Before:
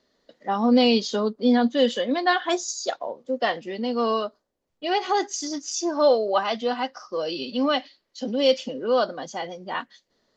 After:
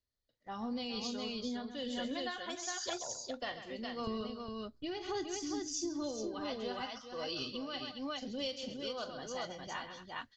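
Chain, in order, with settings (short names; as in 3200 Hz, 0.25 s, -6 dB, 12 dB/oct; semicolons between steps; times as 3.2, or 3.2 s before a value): 4.07–6.4 resonant low shelf 440 Hz +10 dB, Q 1.5; AGC gain up to 11.5 dB; gate -40 dBFS, range -9 dB; EQ curve 110 Hz 0 dB, 170 Hz -20 dB, 530 Hz -24 dB, 5900 Hz -14 dB; tapped delay 41/134/224/411 ms -13.5/-12/-18.5/-4 dB; compressor, threshold -35 dBFS, peak gain reduction 8.5 dB; noise-modulated level, depth 65%; gain +2.5 dB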